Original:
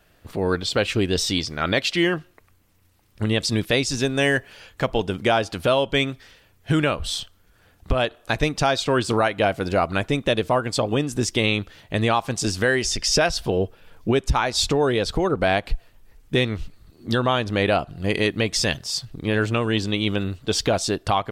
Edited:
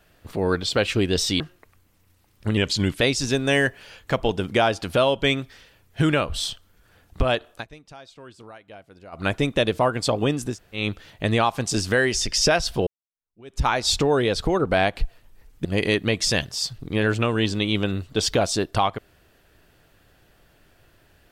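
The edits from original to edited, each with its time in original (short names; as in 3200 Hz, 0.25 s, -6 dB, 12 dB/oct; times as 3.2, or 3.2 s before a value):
1.4–2.15 cut
3.32–3.71 speed 89%
8.2–9.97 dip -23.5 dB, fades 0.15 s
11.21–11.5 room tone, crossfade 0.16 s
13.57–14.33 fade in exponential
16.35–17.97 cut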